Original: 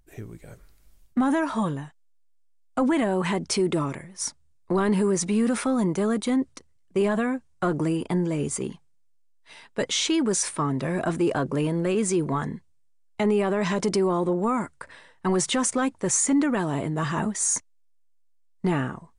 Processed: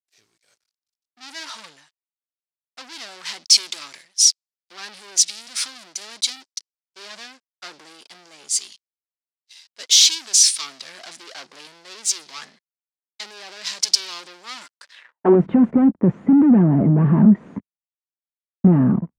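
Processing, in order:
leveller curve on the samples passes 5
dynamic equaliser 140 Hz, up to −3 dB, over −30 dBFS, Q 0.98
band-pass filter sweep 4,900 Hz → 200 Hz, 0:14.90–0:15.40
multiband upward and downward expander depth 100%

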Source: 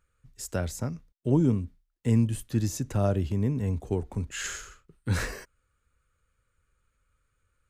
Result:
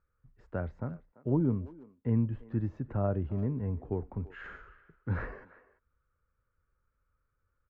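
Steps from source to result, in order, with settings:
transistor ladder low-pass 1,900 Hz, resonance 20%
far-end echo of a speakerphone 340 ms, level −18 dB

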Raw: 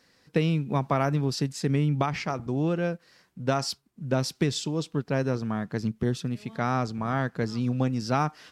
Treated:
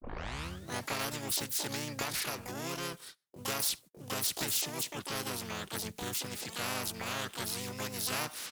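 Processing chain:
turntable start at the beginning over 0.87 s
parametric band 140 Hz −4 dB 0.55 octaves
noise gate −50 dBFS, range −36 dB
pitch-shifted copies added −4 semitones 0 dB, +12 semitones −3 dB
first-order pre-emphasis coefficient 0.8
every bin compressed towards the loudest bin 2 to 1

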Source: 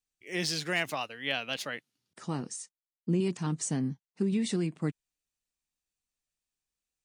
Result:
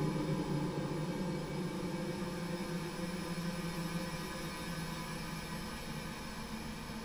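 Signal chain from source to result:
samples in bit-reversed order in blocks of 64 samples
background noise pink −50 dBFS
high-frequency loss of the air 70 metres
on a send: delay that swaps between a low-pass and a high-pass 184 ms, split 900 Hz, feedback 60%, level −2.5 dB
on the sum: extreme stretch with random phases 32×, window 0.25 s, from 0:05.09
level +1.5 dB

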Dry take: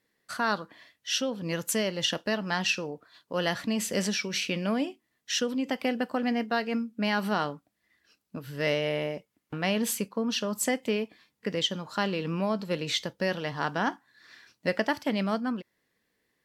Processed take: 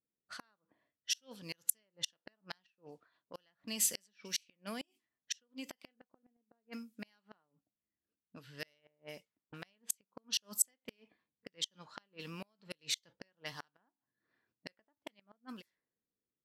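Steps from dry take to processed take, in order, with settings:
gate with flip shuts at −19 dBFS, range −35 dB
low-pass that shuts in the quiet parts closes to 360 Hz, open at −31.5 dBFS
first-order pre-emphasis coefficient 0.9
level +3.5 dB

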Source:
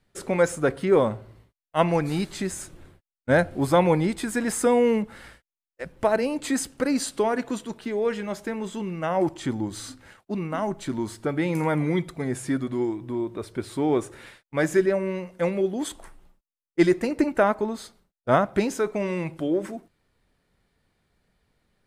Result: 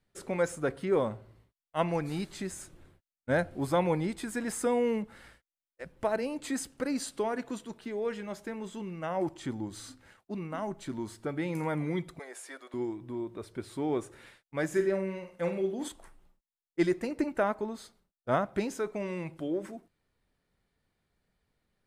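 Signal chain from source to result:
0:12.19–0:12.74: high-pass filter 500 Hz 24 dB per octave
0:14.68–0:15.88: flutter between parallel walls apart 8 metres, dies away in 0.35 s
level −8 dB

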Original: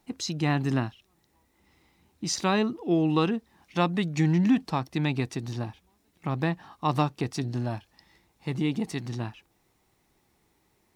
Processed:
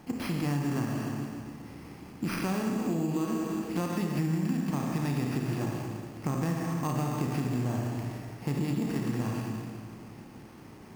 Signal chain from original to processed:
compressor on every frequency bin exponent 0.6
low-shelf EQ 140 Hz +4 dB
notch filter 3,800 Hz, Q 6.2
four-comb reverb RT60 2 s, combs from 28 ms, DRR −0.5 dB
bad sample-rate conversion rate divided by 6×, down none, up hold
on a send: bucket-brigade delay 270 ms, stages 1,024, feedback 69%, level −22 dB
on the sum: downward compressor, threshold −21 dBFS, peak gain reduction 9.5 dB
low-shelf EQ 280 Hz +6 dB
level −8.5 dB

